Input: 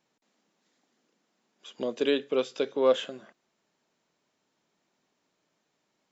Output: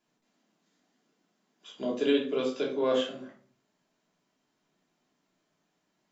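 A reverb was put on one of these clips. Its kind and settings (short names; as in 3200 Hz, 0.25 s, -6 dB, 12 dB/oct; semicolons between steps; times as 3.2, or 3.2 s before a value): shoebox room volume 330 m³, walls furnished, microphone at 3.1 m; gain -6 dB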